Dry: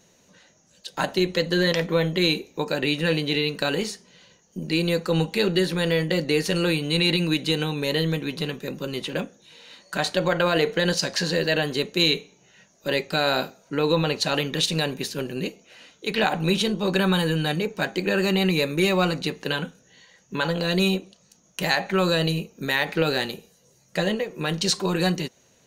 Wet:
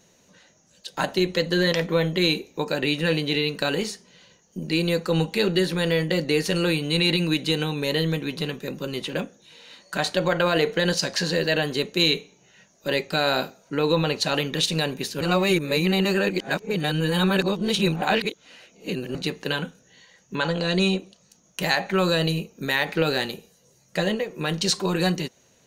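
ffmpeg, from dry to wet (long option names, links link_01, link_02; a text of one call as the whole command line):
ffmpeg -i in.wav -filter_complex "[0:a]asettb=1/sr,asplit=3[link_01][link_02][link_03];[link_01]atrim=end=20.354[link_04];[link_02]atrim=start=20.35:end=20.99,asetpts=PTS-STARTPTS,afade=type=in:duration=0.004:curve=qsin,afade=type=out:start_time=0.636:duration=0.004:curve=qsin,lowpass=frequency=8900:width=0.5412,lowpass=frequency=8900:width=1.3066[link_05];[link_03]atrim=start=20.986[link_06];[link_04][link_05]acrossfade=duration=0.004:curve1=hsin:curve2=qsin[link_07];[link_07][link_06]acrossfade=duration=0.004:curve1=qsin:curve2=hsin,asplit=3[link_08][link_09][link_10];[link_08]atrim=end=15.212[link_11];[link_09]atrim=start=15.208:end=19.152,asetpts=PTS-STARTPTS,areverse[link_12];[link_10]atrim=start=19.148[link_13];[link_11][link_12]acrossfade=duration=0.004:curve1=hsin:curve2=hsin[link_14];[link_14][link_13]acrossfade=duration=0.004:curve1=hsin:curve2=hsin" out.wav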